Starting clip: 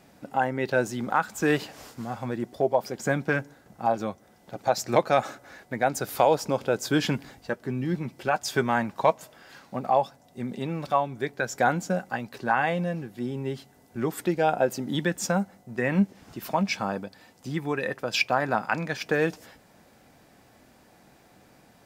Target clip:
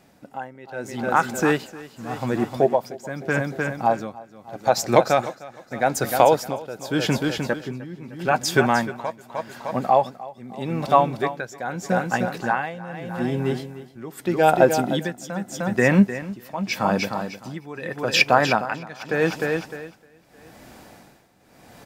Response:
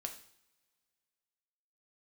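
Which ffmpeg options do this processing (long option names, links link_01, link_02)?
-af "aecho=1:1:305|610|915|1220:0.398|0.155|0.0606|0.0236,dynaudnorm=framelen=320:gausssize=7:maxgain=11.5dB,tremolo=f=0.82:d=0.85"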